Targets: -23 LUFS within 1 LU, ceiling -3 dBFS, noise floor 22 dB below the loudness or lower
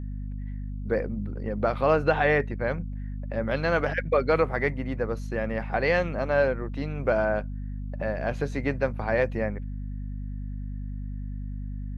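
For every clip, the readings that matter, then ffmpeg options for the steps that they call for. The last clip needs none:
hum 50 Hz; harmonics up to 250 Hz; hum level -31 dBFS; loudness -28.0 LUFS; peak -9.5 dBFS; loudness target -23.0 LUFS
-> -af "bandreject=f=50:t=h:w=6,bandreject=f=100:t=h:w=6,bandreject=f=150:t=h:w=6,bandreject=f=200:t=h:w=6,bandreject=f=250:t=h:w=6"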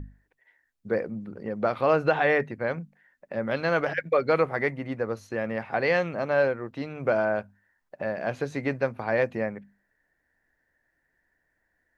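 hum none; loudness -27.5 LUFS; peak -10.0 dBFS; loudness target -23.0 LUFS
-> -af "volume=4.5dB"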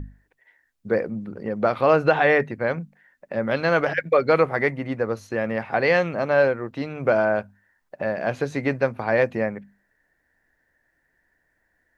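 loudness -23.0 LUFS; peak -5.5 dBFS; noise floor -71 dBFS

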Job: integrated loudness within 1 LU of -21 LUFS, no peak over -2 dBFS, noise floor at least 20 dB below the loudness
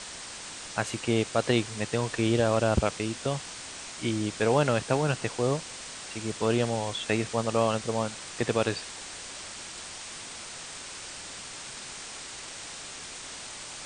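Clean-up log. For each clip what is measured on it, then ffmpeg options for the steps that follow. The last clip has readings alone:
noise floor -42 dBFS; noise floor target -50 dBFS; loudness -30.0 LUFS; peak -9.5 dBFS; loudness target -21.0 LUFS
-> -af "afftdn=nr=8:nf=-42"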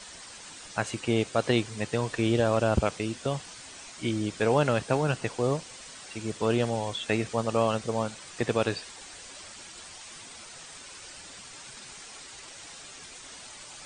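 noise floor -46 dBFS; noise floor target -49 dBFS
-> -af "afftdn=nr=6:nf=-46"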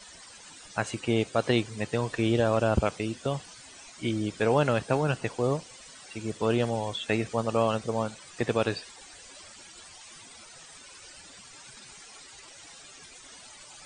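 noise floor -50 dBFS; loudness -28.5 LUFS; peak -10.0 dBFS; loudness target -21.0 LUFS
-> -af "volume=7.5dB"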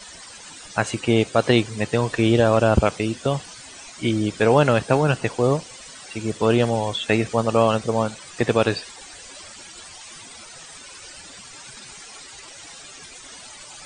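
loudness -21.0 LUFS; peak -2.5 dBFS; noise floor -42 dBFS

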